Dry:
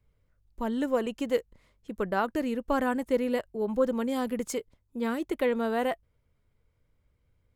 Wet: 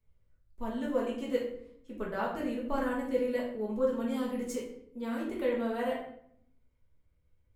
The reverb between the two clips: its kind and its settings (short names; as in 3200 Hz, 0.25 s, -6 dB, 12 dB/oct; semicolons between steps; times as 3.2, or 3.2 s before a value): shoebox room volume 130 m³, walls mixed, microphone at 1.5 m; gain -11 dB